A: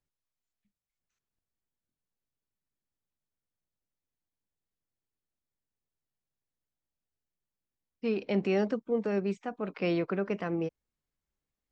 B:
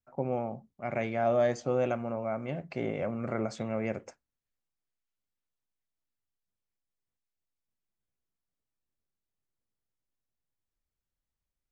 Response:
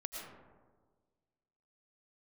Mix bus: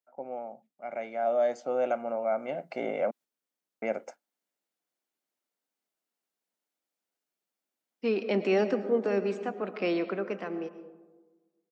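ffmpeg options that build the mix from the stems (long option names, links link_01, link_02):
-filter_complex "[0:a]volume=-2.5dB,asplit=2[link_01][link_02];[link_02]volume=-11dB[link_03];[1:a]equalizer=frequency=600:width_type=o:width=2.5:gain=6,aecho=1:1:1.4:0.44,volume=-11.5dB,asplit=3[link_04][link_05][link_06];[link_04]atrim=end=3.11,asetpts=PTS-STARTPTS,afade=type=out:start_time=3.106:duration=0.004:curve=hsin[link_07];[link_05]atrim=start=3.11:end=3.82,asetpts=PTS-STARTPTS,volume=0[link_08];[link_06]atrim=start=3.82,asetpts=PTS-STARTPTS,afade=type=in:duration=0.004:curve=hsin[link_09];[link_07][link_08][link_09]concat=n=3:v=0:a=1,asplit=2[link_10][link_11];[link_11]apad=whole_len=516442[link_12];[link_01][link_12]sidechaingate=range=-7dB:threshold=-57dB:ratio=16:detection=peak[link_13];[2:a]atrim=start_sample=2205[link_14];[link_03][link_14]afir=irnorm=-1:irlink=0[link_15];[link_13][link_10][link_15]amix=inputs=3:normalize=0,highpass=frequency=230:width=0.5412,highpass=frequency=230:width=1.3066,dynaudnorm=framelen=210:gausssize=17:maxgain=10dB"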